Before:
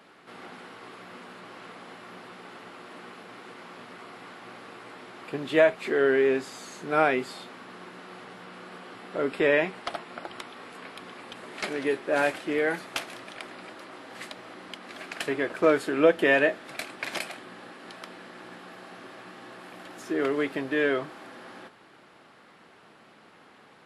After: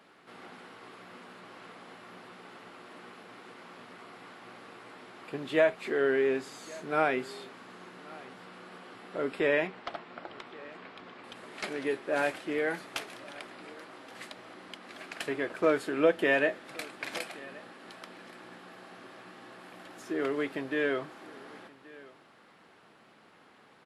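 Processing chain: 9.67–11.24 s: distance through air 110 m; on a send: delay 1124 ms -21.5 dB; on the sum: trim -4.5 dB

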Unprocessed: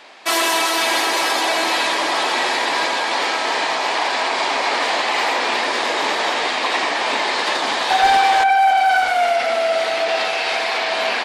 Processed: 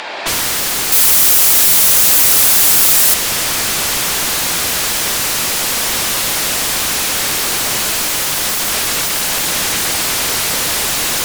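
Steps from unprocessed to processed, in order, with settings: distance through air 71 m; plate-style reverb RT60 4.4 s, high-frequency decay 0.75×, DRR -9.5 dB; upward compressor, threshold -36 dBFS; sine folder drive 20 dB, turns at -2.5 dBFS; 0.92–3.14 s: treble shelf 8 kHz +12 dB; trim -11 dB

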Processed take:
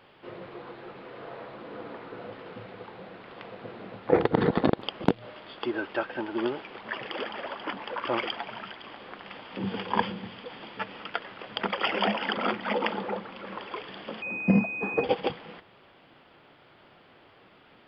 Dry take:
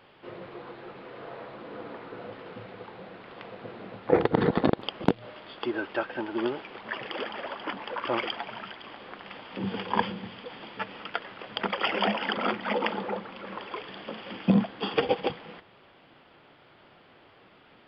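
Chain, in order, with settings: 14.22–15.04 s: class-D stage that switches slowly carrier 2.5 kHz

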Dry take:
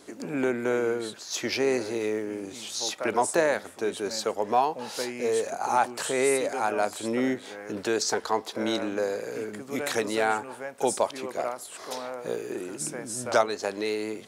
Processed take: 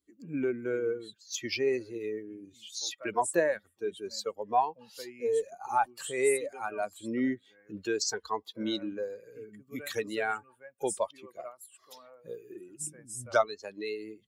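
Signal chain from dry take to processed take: expander on every frequency bin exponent 2; Chebyshev shaper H 4 -43 dB, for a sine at -12 dBFS

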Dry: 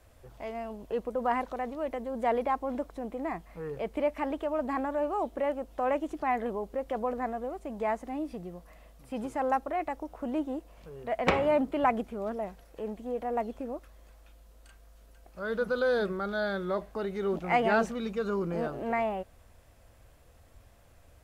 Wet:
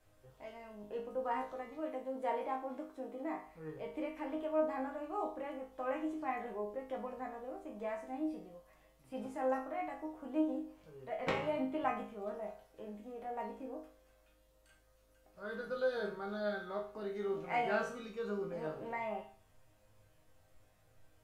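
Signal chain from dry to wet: 1.82–3.47 s: resonant low shelf 200 Hz -9 dB, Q 1.5; chord resonator G#2 major, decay 0.46 s; trim +7 dB

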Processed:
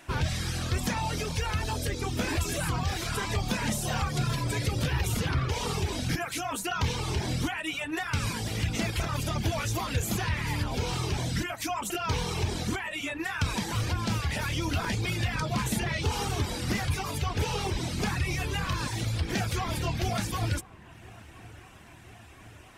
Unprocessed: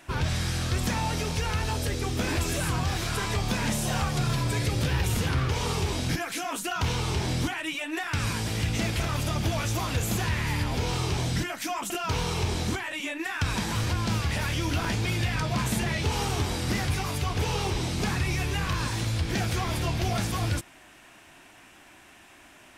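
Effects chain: reverb removal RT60 0.84 s; feedback echo behind a low-pass 1018 ms, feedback 74%, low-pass 2.1 kHz, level -22.5 dB

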